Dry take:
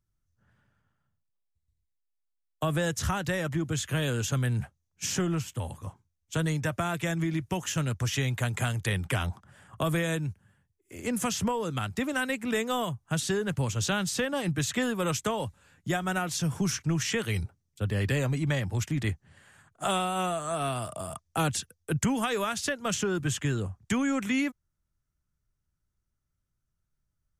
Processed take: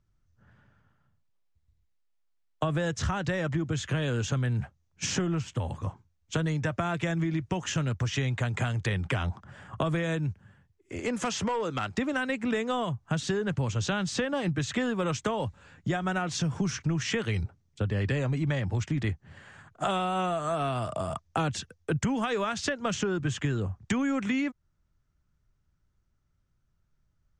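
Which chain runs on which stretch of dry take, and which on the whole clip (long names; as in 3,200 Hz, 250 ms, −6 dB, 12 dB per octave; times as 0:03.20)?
0:10.99–0:11.98: bass and treble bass −10 dB, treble 0 dB + hard clipping −27 dBFS
whole clip: low-pass filter 7,400 Hz 24 dB per octave; high-shelf EQ 3,600 Hz −7.5 dB; downward compressor 3 to 1, threshold −36 dBFS; level +8 dB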